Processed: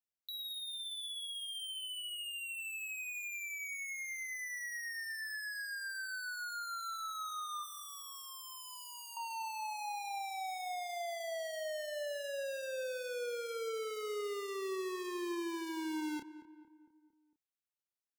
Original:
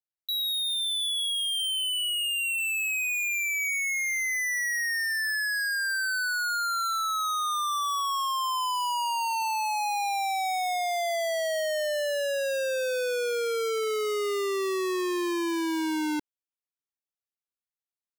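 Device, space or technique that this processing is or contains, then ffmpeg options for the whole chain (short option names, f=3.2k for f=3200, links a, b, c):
de-esser from a sidechain: -filter_complex "[0:a]asettb=1/sr,asplit=3[a][b][c];[a]atrim=end=7.634[d];[b]atrim=start=7.63:end=9.17,asetpts=PTS-STARTPTS,afade=t=in:d=0.004:c=qsin,afade=t=out:st=1.536:d=0.004:c=qsin,aderivative[e];[c]atrim=start=9.166[f];[d][e]acrossfade=d=0.004:c1=hsin:c2=qsin[g];[g][f]acrossfade=d=0.004:c1=qsin:c2=hsin,asplit=2[h][i];[i]adelay=29,volume=-11dB[j];[h][j]amix=inputs=2:normalize=0,asplit=2[k][l];[l]highpass=f=4.4k:p=1,apad=whole_len=803392[m];[k][m]sidechaincompress=threshold=-38dB:ratio=8:attack=1.9:release=65,asplit=2[n][o];[o]adelay=227,lowpass=f=1.6k:p=1,volume=-13.5dB,asplit=2[p][q];[q]adelay=227,lowpass=f=1.6k:p=1,volume=0.54,asplit=2[r][s];[s]adelay=227,lowpass=f=1.6k:p=1,volume=0.54,asplit=2[t][u];[u]adelay=227,lowpass=f=1.6k:p=1,volume=0.54,asplit=2[v][w];[w]adelay=227,lowpass=f=1.6k:p=1,volume=0.54[x];[n][p][r][t][v][x]amix=inputs=6:normalize=0,volume=-4.5dB"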